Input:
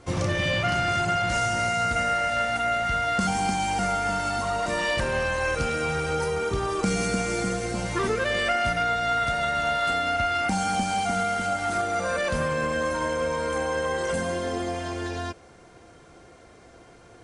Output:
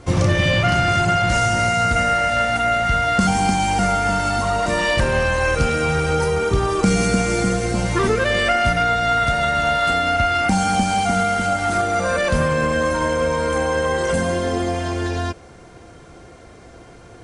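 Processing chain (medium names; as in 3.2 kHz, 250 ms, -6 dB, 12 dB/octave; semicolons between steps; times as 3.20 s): bass shelf 210 Hz +5.5 dB; trim +6 dB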